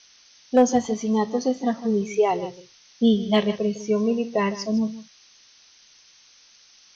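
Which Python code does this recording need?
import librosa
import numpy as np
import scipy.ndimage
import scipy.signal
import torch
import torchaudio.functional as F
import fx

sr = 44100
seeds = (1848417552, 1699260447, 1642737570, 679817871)

y = fx.fix_declip(x, sr, threshold_db=-9.5)
y = fx.noise_reduce(y, sr, print_start_s=5.27, print_end_s=5.77, reduce_db=14.0)
y = fx.fix_echo_inverse(y, sr, delay_ms=155, level_db=-15.0)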